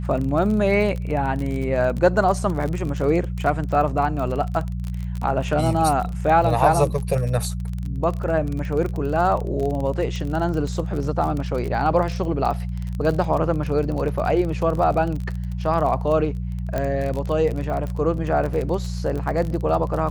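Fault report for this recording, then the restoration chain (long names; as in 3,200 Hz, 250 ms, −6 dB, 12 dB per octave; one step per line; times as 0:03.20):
surface crackle 33 per second −26 dBFS
mains hum 60 Hz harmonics 3 −27 dBFS
0:16.78: click −12 dBFS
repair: click removal
hum removal 60 Hz, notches 3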